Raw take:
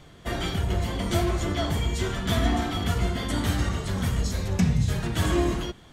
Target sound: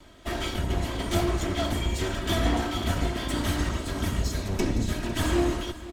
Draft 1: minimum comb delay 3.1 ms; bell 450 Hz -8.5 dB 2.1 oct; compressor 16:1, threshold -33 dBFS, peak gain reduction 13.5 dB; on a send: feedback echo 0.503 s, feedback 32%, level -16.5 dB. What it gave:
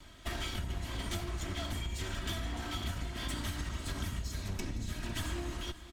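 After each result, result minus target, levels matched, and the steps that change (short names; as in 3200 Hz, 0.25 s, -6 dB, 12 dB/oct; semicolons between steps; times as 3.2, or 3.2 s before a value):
compressor: peak gain reduction +13.5 dB; 500 Hz band -5.0 dB
remove: compressor 16:1, threshold -33 dBFS, peak gain reduction 13.5 dB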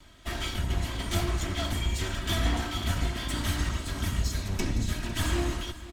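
500 Hz band -5.0 dB
remove: bell 450 Hz -8.5 dB 2.1 oct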